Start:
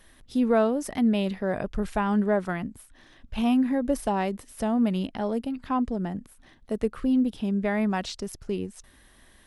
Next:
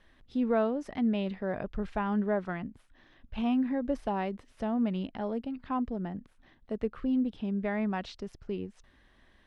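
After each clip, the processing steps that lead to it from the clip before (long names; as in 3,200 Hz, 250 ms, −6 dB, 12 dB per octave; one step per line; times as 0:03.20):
low-pass filter 3,600 Hz 12 dB per octave
level −5.5 dB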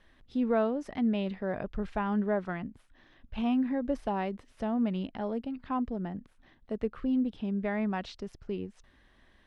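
no processing that can be heard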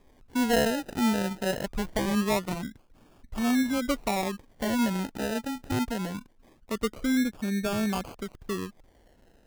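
sample-and-hold swept by an LFO 31×, swing 60% 0.23 Hz
level +3 dB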